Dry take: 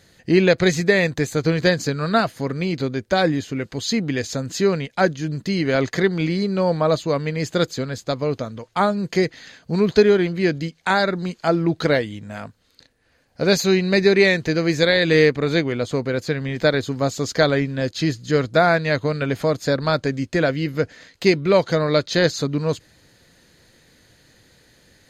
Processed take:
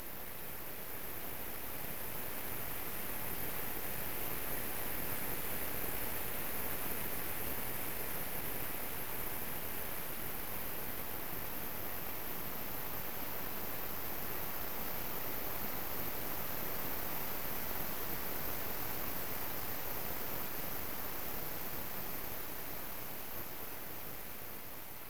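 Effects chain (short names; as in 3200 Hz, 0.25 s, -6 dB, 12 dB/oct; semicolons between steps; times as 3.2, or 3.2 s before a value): Paulstretch 20×, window 1.00 s, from 3.59; inverse Chebyshev high-pass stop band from 1300 Hz, stop band 80 dB; full-wave rectifier; gain +6 dB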